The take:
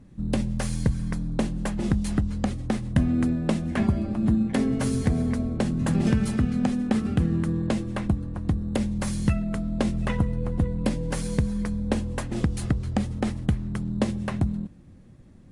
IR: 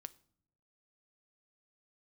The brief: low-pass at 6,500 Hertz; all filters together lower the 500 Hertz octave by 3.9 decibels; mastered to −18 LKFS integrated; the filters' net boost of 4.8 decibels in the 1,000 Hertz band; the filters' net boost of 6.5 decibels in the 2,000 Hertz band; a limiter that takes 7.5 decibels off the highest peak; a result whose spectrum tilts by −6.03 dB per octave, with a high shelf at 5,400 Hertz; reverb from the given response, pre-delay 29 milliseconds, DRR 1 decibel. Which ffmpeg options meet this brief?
-filter_complex "[0:a]lowpass=6500,equalizer=frequency=500:width_type=o:gain=-7,equalizer=frequency=1000:width_type=o:gain=7,equalizer=frequency=2000:width_type=o:gain=7,highshelf=frequency=5400:gain=-6.5,alimiter=limit=-15.5dB:level=0:latency=1,asplit=2[link_01][link_02];[1:a]atrim=start_sample=2205,adelay=29[link_03];[link_02][link_03]afir=irnorm=-1:irlink=0,volume=4.5dB[link_04];[link_01][link_04]amix=inputs=2:normalize=0,volume=7.5dB"

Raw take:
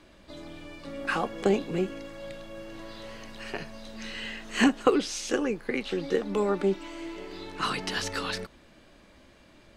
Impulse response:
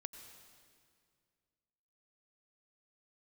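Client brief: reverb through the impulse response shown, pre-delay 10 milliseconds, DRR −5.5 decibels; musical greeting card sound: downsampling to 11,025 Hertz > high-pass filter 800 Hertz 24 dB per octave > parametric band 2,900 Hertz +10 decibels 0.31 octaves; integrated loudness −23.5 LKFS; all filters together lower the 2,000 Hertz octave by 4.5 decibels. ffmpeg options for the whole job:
-filter_complex "[0:a]equalizer=frequency=2000:width_type=o:gain=-9,asplit=2[link_01][link_02];[1:a]atrim=start_sample=2205,adelay=10[link_03];[link_02][link_03]afir=irnorm=-1:irlink=0,volume=9.5dB[link_04];[link_01][link_04]amix=inputs=2:normalize=0,aresample=11025,aresample=44100,highpass=frequency=800:width=0.5412,highpass=frequency=800:width=1.3066,equalizer=frequency=2900:width_type=o:width=0.31:gain=10,volume=6.5dB"

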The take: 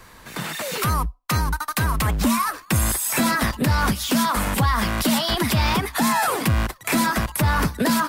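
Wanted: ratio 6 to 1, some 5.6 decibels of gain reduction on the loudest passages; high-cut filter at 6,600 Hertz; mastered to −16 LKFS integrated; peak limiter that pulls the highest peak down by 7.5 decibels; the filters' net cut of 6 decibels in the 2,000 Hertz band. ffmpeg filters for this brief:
ffmpeg -i in.wav -af "lowpass=6600,equalizer=frequency=2000:width_type=o:gain=-8,acompressor=threshold=-22dB:ratio=6,volume=14dB,alimiter=limit=-7.5dB:level=0:latency=1" out.wav

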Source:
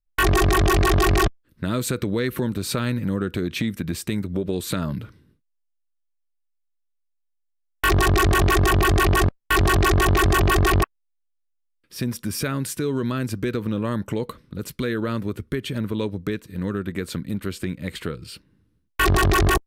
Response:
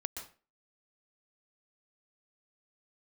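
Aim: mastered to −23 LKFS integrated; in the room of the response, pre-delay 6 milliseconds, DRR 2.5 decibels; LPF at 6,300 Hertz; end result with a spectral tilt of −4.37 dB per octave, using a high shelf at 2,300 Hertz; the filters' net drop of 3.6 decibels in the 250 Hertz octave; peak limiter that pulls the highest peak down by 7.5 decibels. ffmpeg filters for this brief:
-filter_complex "[0:a]lowpass=6300,equalizer=frequency=250:width_type=o:gain=-5.5,highshelf=frequency=2300:gain=7.5,alimiter=limit=-15.5dB:level=0:latency=1,asplit=2[link_01][link_02];[1:a]atrim=start_sample=2205,adelay=6[link_03];[link_02][link_03]afir=irnorm=-1:irlink=0,volume=-2.5dB[link_04];[link_01][link_04]amix=inputs=2:normalize=0,volume=1dB"

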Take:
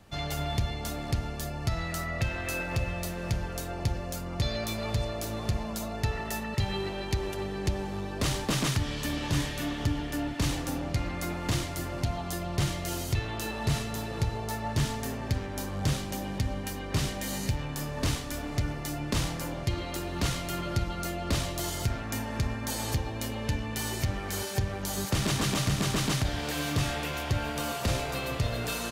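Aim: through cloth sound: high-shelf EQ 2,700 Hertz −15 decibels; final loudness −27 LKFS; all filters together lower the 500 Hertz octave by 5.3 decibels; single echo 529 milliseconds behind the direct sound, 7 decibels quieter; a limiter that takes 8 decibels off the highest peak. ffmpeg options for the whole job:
ffmpeg -i in.wav -af "equalizer=frequency=500:width_type=o:gain=-6.5,alimiter=level_in=1dB:limit=-24dB:level=0:latency=1,volume=-1dB,highshelf=frequency=2700:gain=-15,aecho=1:1:529:0.447,volume=9dB" out.wav

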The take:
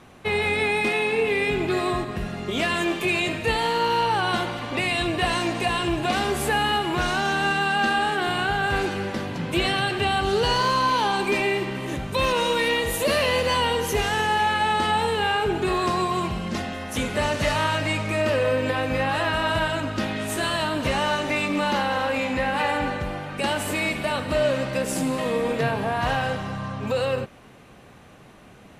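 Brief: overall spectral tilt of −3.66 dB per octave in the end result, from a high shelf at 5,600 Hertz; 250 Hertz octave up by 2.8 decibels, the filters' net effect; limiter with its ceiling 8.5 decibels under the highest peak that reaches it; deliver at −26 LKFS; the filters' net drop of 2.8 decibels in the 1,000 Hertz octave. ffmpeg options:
ffmpeg -i in.wav -af "equalizer=frequency=250:width_type=o:gain=4,equalizer=frequency=1000:width_type=o:gain=-3.5,highshelf=frequency=5600:gain=-6.5,volume=1.5dB,alimiter=limit=-17.5dB:level=0:latency=1" out.wav

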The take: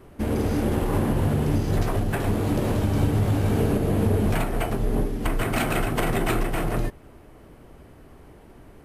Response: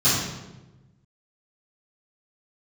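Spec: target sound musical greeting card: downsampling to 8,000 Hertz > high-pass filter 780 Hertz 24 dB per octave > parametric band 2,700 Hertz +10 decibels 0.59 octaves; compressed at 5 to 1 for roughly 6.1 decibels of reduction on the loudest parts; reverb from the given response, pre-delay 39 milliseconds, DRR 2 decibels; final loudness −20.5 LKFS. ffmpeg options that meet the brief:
-filter_complex "[0:a]acompressor=threshold=-24dB:ratio=5,asplit=2[link_01][link_02];[1:a]atrim=start_sample=2205,adelay=39[link_03];[link_02][link_03]afir=irnorm=-1:irlink=0,volume=-19.5dB[link_04];[link_01][link_04]amix=inputs=2:normalize=0,aresample=8000,aresample=44100,highpass=frequency=780:width=0.5412,highpass=frequency=780:width=1.3066,equalizer=frequency=2700:width_type=o:width=0.59:gain=10,volume=12.5dB"

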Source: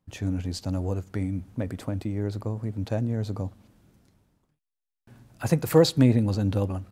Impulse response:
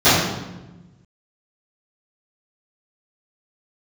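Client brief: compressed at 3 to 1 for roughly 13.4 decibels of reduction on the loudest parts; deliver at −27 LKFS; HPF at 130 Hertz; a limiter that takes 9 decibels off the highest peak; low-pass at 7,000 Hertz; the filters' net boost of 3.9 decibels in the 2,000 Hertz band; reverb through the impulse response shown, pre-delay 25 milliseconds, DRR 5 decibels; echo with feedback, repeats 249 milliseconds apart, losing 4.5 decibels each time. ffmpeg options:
-filter_complex "[0:a]highpass=130,lowpass=7000,equalizer=frequency=2000:width_type=o:gain=5,acompressor=threshold=-31dB:ratio=3,alimiter=level_in=2dB:limit=-24dB:level=0:latency=1,volume=-2dB,aecho=1:1:249|498|747|996|1245|1494|1743|1992|2241:0.596|0.357|0.214|0.129|0.0772|0.0463|0.0278|0.0167|0.01,asplit=2[link_01][link_02];[1:a]atrim=start_sample=2205,adelay=25[link_03];[link_02][link_03]afir=irnorm=-1:irlink=0,volume=-32dB[link_04];[link_01][link_04]amix=inputs=2:normalize=0,volume=6dB"

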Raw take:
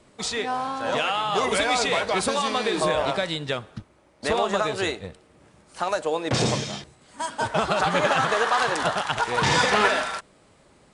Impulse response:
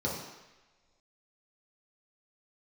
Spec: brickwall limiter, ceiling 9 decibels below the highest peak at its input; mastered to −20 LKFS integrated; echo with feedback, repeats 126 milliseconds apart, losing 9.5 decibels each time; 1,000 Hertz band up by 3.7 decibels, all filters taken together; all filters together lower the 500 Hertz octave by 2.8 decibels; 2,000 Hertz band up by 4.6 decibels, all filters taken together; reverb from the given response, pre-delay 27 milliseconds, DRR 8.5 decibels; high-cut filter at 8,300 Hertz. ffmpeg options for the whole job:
-filter_complex "[0:a]lowpass=8300,equalizer=frequency=500:width_type=o:gain=-5.5,equalizer=frequency=1000:width_type=o:gain=5,equalizer=frequency=2000:width_type=o:gain=4.5,alimiter=limit=-11.5dB:level=0:latency=1,aecho=1:1:126|252|378|504:0.335|0.111|0.0365|0.012,asplit=2[link_01][link_02];[1:a]atrim=start_sample=2205,adelay=27[link_03];[link_02][link_03]afir=irnorm=-1:irlink=0,volume=-15.5dB[link_04];[link_01][link_04]amix=inputs=2:normalize=0,volume=2dB"

